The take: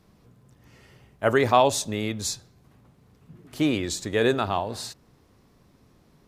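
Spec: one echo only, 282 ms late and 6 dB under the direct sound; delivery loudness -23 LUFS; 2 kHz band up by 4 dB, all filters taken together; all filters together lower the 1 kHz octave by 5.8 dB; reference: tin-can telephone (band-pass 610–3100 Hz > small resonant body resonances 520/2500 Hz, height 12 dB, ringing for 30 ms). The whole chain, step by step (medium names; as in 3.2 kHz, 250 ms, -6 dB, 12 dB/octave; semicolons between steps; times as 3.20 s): band-pass 610–3100 Hz; peaking EQ 1 kHz -8.5 dB; peaking EQ 2 kHz +8.5 dB; delay 282 ms -6 dB; small resonant body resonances 520/2500 Hz, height 12 dB, ringing for 30 ms; trim +1 dB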